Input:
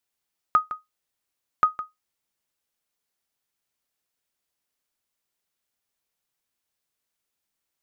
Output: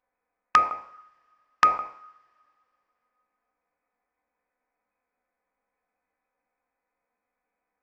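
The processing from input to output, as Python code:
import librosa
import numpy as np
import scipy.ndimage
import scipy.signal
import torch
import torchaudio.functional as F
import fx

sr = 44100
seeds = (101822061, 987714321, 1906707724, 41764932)

y = fx.spec_trails(x, sr, decay_s=0.47)
y = fx.freq_invert(y, sr, carrier_hz=2500)
y = fx.peak_eq(y, sr, hz=690.0, db=10.5, octaves=2.0)
y = fx.env_flanger(y, sr, rest_ms=4.0, full_db=-24.0)
y = fx.rev_double_slope(y, sr, seeds[0], early_s=0.76, late_s=3.1, knee_db=-20, drr_db=17.0)
y = y * librosa.db_to_amplitude(3.5)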